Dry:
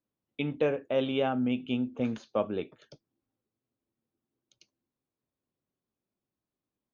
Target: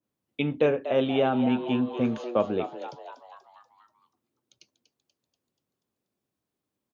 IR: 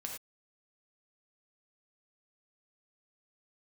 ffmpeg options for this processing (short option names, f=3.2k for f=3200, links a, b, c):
-filter_complex "[0:a]highpass=59,asplit=7[a][b][c][d][e][f][g];[b]adelay=241,afreqshift=120,volume=-11.5dB[h];[c]adelay=482,afreqshift=240,volume=-17dB[i];[d]adelay=723,afreqshift=360,volume=-22.5dB[j];[e]adelay=964,afreqshift=480,volume=-28dB[k];[f]adelay=1205,afreqshift=600,volume=-33.6dB[l];[g]adelay=1446,afreqshift=720,volume=-39.1dB[m];[a][h][i][j][k][l][m]amix=inputs=7:normalize=0,adynamicequalizer=threshold=0.00447:dfrequency=2200:dqfactor=0.7:tfrequency=2200:tqfactor=0.7:attack=5:release=100:ratio=0.375:range=2:mode=cutabove:tftype=highshelf,volume=4.5dB"